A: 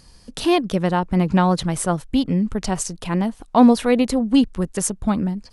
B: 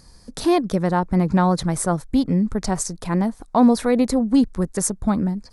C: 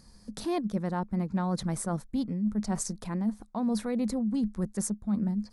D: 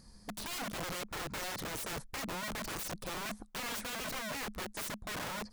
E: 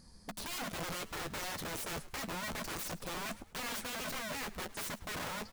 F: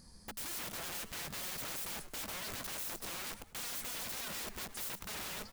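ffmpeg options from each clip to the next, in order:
-filter_complex "[0:a]equalizer=f=2900:t=o:w=0.44:g=-13,asplit=2[s0][s1];[s1]alimiter=limit=0.282:level=0:latency=1:release=22,volume=1.26[s2];[s0][s2]amix=inputs=2:normalize=0,volume=0.473"
-af "equalizer=f=210:w=7:g=14,areverse,acompressor=threshold=0.112:ratio=6,areverse,volume=0.422"
-af "aeval=exprs='(mod(44.7*val(0)+1,2)-1)/44.7':c=same,volume=0.841"
-filter_complex "[0:a]asplit=2[s0][s1];[s1]adelay=12,volume=0.335[s2];[s0][s2]amix=inputs=2:normalize=0,asplit=4[s3][s4][s5][s6];[s4]adelay=106,afreqshift=-100,volume=0.126[s7];[s5]adelay=212,afreqshift=-200,volume=0.049[s8];[s6]adelay=318,afreqshift=-300,volume=0.0191[s9];[s3][s7][s8][s9]amix=inputs=4:normalize=0,volume=0.891"
-af "aeval=exprs='(mod(94.4*val(0)+1,2)-1)/94.4':c=same,crystalizer=i=0.5:c=0"

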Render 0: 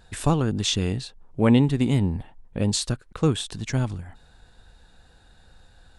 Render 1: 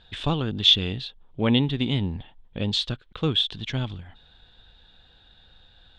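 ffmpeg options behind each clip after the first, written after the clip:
-af "lowpass=f=3400:t=q:w=6.3,volume=0.631"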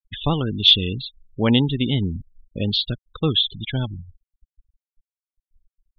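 -af "afftfilt=real='re*gte(hypot(re,im),0.0355)':imag='im*gte(hypot(re,im),0.0355)':win_size=1024:overlap=0.75,volume=1.5"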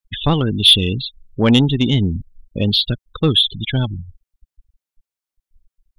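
-af "acontrast=85,volume=0.891"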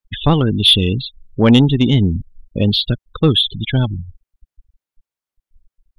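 -af "highshelf=f=2800:g=-6.5,volume=1.41"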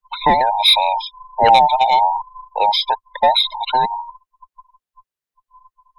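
-af "afftfilt=real='real(if(between(b,1,1008),(2*floor((b-1)/48)+1)*48-b,b),0)':imag='imag(if(between(b,1,1008),(2*floor((b-1)/48)+1)*48-b,b),0)*if(between(b,1,1008),-1,1)':win_size=2048:overlap=0.75,volume=0.891"

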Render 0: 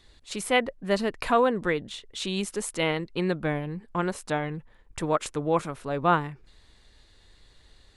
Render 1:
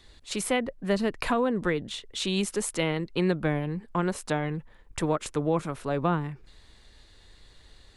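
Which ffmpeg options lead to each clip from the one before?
-filter_complex "[0:a]acrossover=split=330[s0][s1];[s1]acompressor=threshold=0.0398:ratio=6[s2];[s0][s2]amix=inputs=2:normalize=0,volume=1.33"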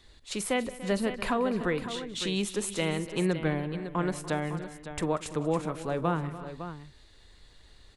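-af "aecho=1:1:44|186|291|341|557:0.112|0.106|0.158|0.1|0.282,volume=0.75"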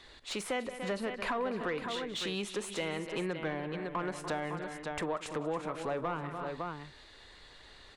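-filter_complex "[0:a]acompressor=threshold=0.0126:ratio=2.5,asplit=2[s0][s1];[s1]highpass=f=720:p=1,volume=5.62,asoftclip=type=tanh:threshold=0.0794[s2];[s0][s2]amix=inputs=2:normalize=0,lowpass=f=2300:p=1,volume=0.501"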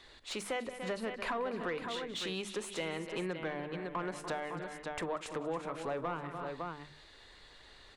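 -af "bandreject=f=50:t=h:w=6,bandreject=f=100:t=h:w=6,bandreject=f=150:t=h:w=6,bandreject=f=200:t=h:w=6,bandreject=f=250:t=h:w=6,bandreject=f=300:t=h:w=6,volume=0.794"

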